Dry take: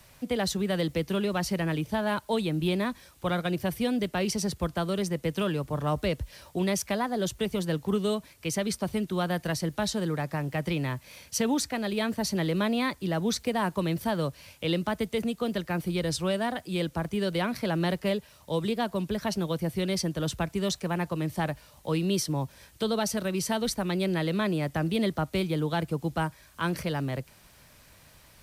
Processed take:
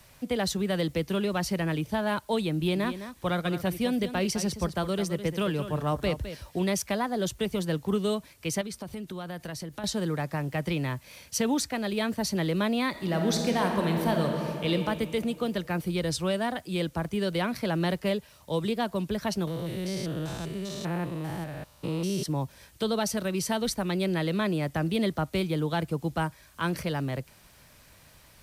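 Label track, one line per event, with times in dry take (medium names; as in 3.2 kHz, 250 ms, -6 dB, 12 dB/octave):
2.550000	6.600000	delay 210 ms -11 dB
8.610000	9.840000	compression 5:1, threshold -34 dBFS
12.890000	14.690000	reverb throw, RT60 2.7 s, DRR 1.5 dB
19.470000	22.260000	spectrogram pixelated in time every 200 ms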